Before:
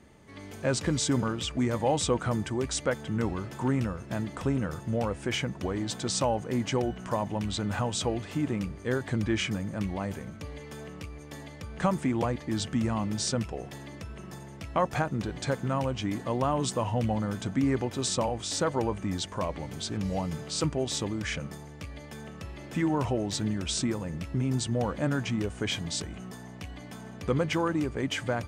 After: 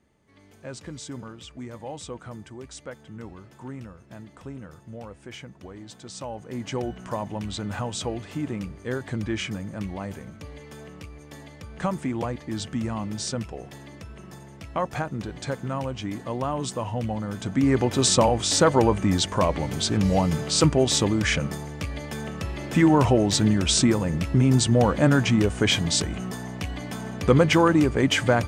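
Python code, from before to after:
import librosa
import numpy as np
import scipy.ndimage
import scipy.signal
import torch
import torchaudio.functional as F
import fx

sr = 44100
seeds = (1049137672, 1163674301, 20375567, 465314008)

y = fx.gain(x, sr, db=fx.line((6.11, -10.5), (6.83, -0.5), (17.25, -0.5), (17.95, 9.5)))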